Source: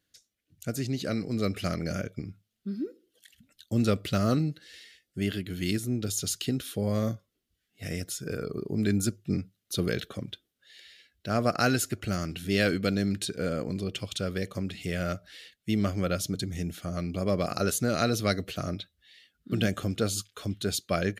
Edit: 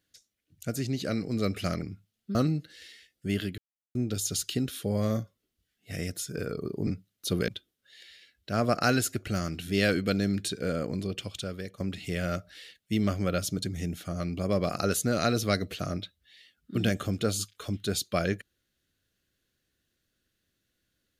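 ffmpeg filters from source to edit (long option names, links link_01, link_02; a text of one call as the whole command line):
ffmpeg -i in.wav -filter_complex "[0:a]asplit=8[link_01][link_02][link_03][link_04][link_05][link_06][link_07][link_08];[link_01]atrim=end=1.822[link_09];[link_02]atrim=start=2.188:end=2.722[link_10];[link_03]atrim=start=4.268:end=5.5,asetpts=PTS-STARTPTS,afade=type=out:start_time=1.228:duration=0.004:curve=hsin[link_11];[link_04]atrim=start=5.5:end=5.87,asetpts=PTS-STARTPTS,volume=0[link_12];[link_05]atrim=start=5.87:end=8.792,asetpts=PTS-STARTPTS,afade=type=in:duration=0.004:curve=hsin[link_13];[link_06]atrim=start=9.338:end=9.952[link_14];[link_07]atrim=start=10.248:end=14.57,asetpts=PTS-STARTPTS,afade=type=out:start_time=3.552:duration=0.77:silence=0.316228[link_15];[link_08]atrim=start=14.57,asetpts=PTS-STARTPTS,afade=type=in:duration=0.004:curve=hsin:silence=0.316228[link_16];[link_09][link_10]acrossfade=duration=0.004:curve1=hsin:curve2=hsin[link_17];[link_11][link_12][link_13]concat=n=3:v=0:a=1[link_18];[link_17][link_18]acrossfade=duration=0.004:curve1=hsin:curve2=hsin[link_19];[link_19][link_14]acrossfade=duration=0.004:curve1=hsin:curve2=hsin[link_20];[link_15][link_16]concat=n=2:v=0:a=1[link_21];[link_20][link_21]acrossfade=duration=0.004:curve1=hsin:curve2=hsin" out.wav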